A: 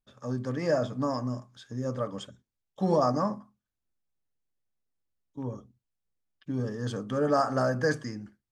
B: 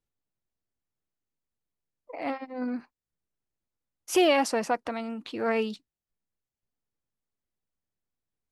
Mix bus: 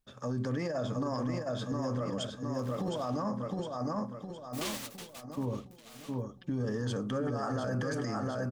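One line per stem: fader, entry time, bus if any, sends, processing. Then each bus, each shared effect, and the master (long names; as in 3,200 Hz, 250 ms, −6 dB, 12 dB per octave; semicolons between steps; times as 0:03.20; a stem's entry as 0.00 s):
+2.5 dB, 0.00 s, no send, echo send −5 dB, compressor whose output falls as the input rises −28 dBFS, ratio −0.5
−5.5 dB, 0.45 s, no send, no echo send, flanger 0.95 Hz, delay 2.8 ms, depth 5.8 ms, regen +51%; downward compressor 1.5 to 1, threshold −39 dBFS, peak gain reduction 7 dB; short delay modulated by noise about 2,900 Hz, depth 0.49 ms; automatic ducking −13 dB, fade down 0.80 s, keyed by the first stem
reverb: not used
echo: repeating echo 712 ms, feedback 44%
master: brickwall limiter −25.5 dBFS, peak gain reduction 11.5 dB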